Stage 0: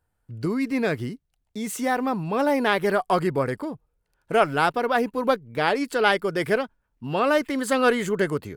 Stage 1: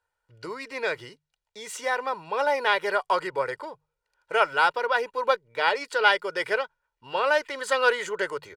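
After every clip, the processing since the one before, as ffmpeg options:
-filter_complex "[0:a]acrossover=split=540 7800:gain=0.112 1 0.158[s0][s1][s2];[s0][s1][s2]amix=inputs=3:normalize=0,bandreject=f=50:t=h:w=6,bandreject=f=100:t=h:w=6,bandreject=f=150:t=h:w=6,aecho=1:1:2.1:0.58"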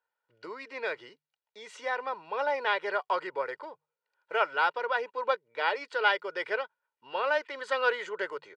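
-af "highpass=270,lowpass=4100,volume=0.562"

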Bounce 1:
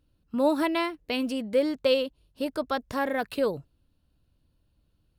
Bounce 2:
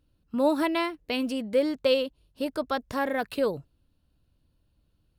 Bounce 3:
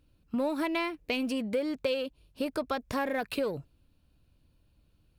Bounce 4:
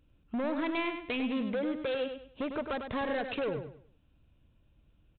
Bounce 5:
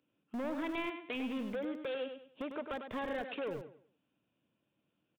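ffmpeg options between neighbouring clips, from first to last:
-af anull
-filter_complex "[0:a]asplit=2[s0][s1];[s1]volume=31.6,asoftclip=hard,volume=0.0316,volume=0.355[s2];[s0][s2]amix=inputs=2:normalize=0,equalizer=f=2400:w=7.9:g=7,acompressor=threshold=0.0398:ratio=4"
-af "aresample=8000,asoftclip=type=hard:threshold=0.0335,aresample=44100,aecho=1:1:100|200|300|400:0.422|0.122|0.0355|0.0103"
-filter_complex "[0:a]aresample=8000,aresample=44100,acrossover=split=160|690|2100[s0][s1][s2][s3];[s0]acrusher=bits=5:dc=4:mix=0:aa=0.000001[s4];[s4][s1][s2][s3]amix=inputs=4:normalize=0,volume=0.531"

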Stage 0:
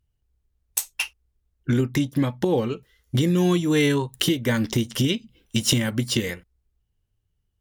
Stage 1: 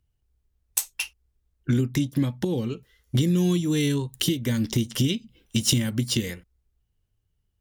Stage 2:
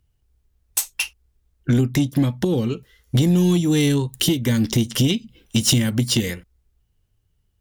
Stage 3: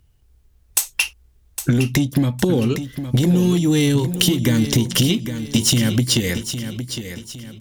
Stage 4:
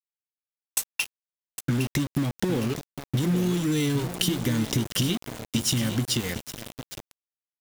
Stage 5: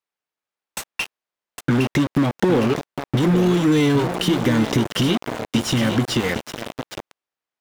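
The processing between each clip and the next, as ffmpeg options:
-filter_complex "[0:a]acrossover=split=330|3000[s0][s1][s2];[s1]acompressor=threshold=0.0158:ratio=6[s3];[s0][s3][s2]amix=inputs=3:normalize=0"
-af "asoftclip=type=tanh:threshold=0.168,volume=2.11"
-filter_complex "[0:a]acompressor=threshold=0.0708:ratio=6,asplit=2[s0][s1];[s1]aecho=0:1:810|1620|2430|3240:0.316|0.12|0.0457|0.0174[s2];[s0][s2]amix=inputs=2:normalize=0,volume=2.66"
-af "aeval=exprs='val(0)*gte(abs(val(0)),0.0841)':c=same,volume=0.398"
-filter_complex "[0:a]asplit=2[s0][s1];[s1]highpass=f=720:p=1,volume=7.08,asoftclip=type=tanh:threshold=0.299[s2];[s0][s2]amix=inputs=2:normalize=0,lowpass=f=1000:p=1,volume=0.501,volume=2.11"

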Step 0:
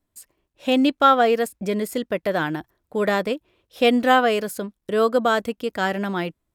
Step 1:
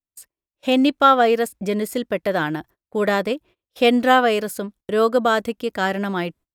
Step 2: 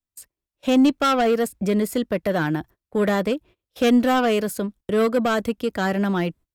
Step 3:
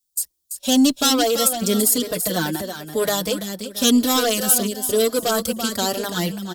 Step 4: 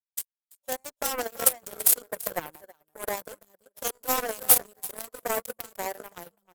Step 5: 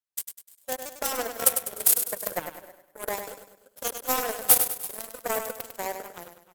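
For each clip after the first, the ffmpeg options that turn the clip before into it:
-af "agate=range=0.0631:threshold=0.00501:ratio=16:detection=peak,volume=1.19"
-filter_complex "[0:a]lowshelf=f=200:g=7.5,acrossover=split=260|6200[s0][s1][s2];[s1]asoftclip=type=tanh:threshold=0.15[s3];[s0][s3][s2]amix=inputs=3:normalize=0"
-filter_complex "[0:a]aexciter=amount=5.5:drive=7.5:freq=3400,aecho=1:1:336|672|1008:0.398|0.111|0.0312,asplit=2[s0][s1];[s1]adelay=4.4,afreqshift=0.99[s2];[s0][s2]amix=inputs=2:normalize=1,volume=1.19"
-af "afftfilt=real='re*lt(hypot(re,im),1)':imag='im*lt(hypot(re,im),1)':win_size=1024:overlap=0.75,equalizer=f=125:t=o:w=1:g=-3,equalizer=f=250:t=o:w=1:g=-9,equalizer=f=500:t=o:w=1:g=9,equalizer=f=1000:t=o:w=1:g=10,equalizer=f=2000:t=o:w=1:g=-5,equalizer=f=4000:t=o:w=1:g=-12,equalizer=f=16000:t=o:w=1:g=10,aeval=exprs='1.58*(cos(1*acos(clip(val(0)/1.58,-1,1)))-cos(1*PI/2))+0.224*(cos(7*acos(clip(val(0)/1.58,-1,1)))-cos(7*PI/2))':c=same,volume=0.596"
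-af "aecho=1:1:100|200|300|400|500:0.398|0.159|0.0637|0.0255|0.0102"

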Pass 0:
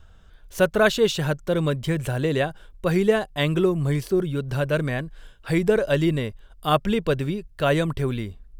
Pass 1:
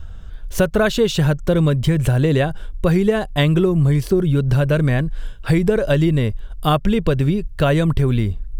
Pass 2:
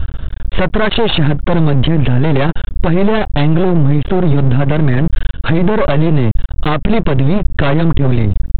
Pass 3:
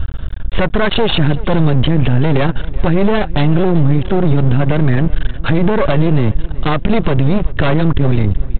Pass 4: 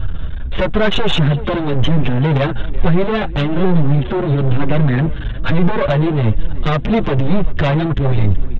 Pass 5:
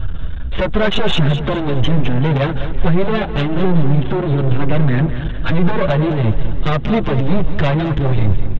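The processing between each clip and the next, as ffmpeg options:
-af "lowshelf=f=180:g=11,acompressor=threshold=0.1:ratio=6,volume=2.37"
-af "aeval=exprs='val(0)+0.00562*(sin(2*PI*50*n/s)+sin(2*PI*2*50*n/s)/2+sin(2*PI*3*50*n/s)/3+sin(2*PI*4*50*n/s)/4+sin(2*PI*5*50*n/s)/5)':c=same,aresample=8000,aeval=exprs='max(val(0),0)':c=same,aresample=44100,alimiter=level_in=7.08:limit=0.891:release=50:level=0:latency=1,volume=0.891"
-af "aecho=1:1:379|758:0.112|0.0314,volume=0.891"
-filter_complex "[0:a]asplit=2[s0][s1];[s1]aeval=exprs='0.841*sin(PI/2*1.58*val(0)/0.841)':c=same,volume=0.447[s2];[s0][s2]amix=inputs=2:normalize=0,asplit=2[s3][s4];[s4]adelay=7.4,afreqshift=-1.1[s5];[s3][s5]amix=inputs=2:normalize=1,volume=0.708"
-af "aecho=1:1:208|416|624|832:0.282|0.107|0.0407|0.0155,volume=0.891"

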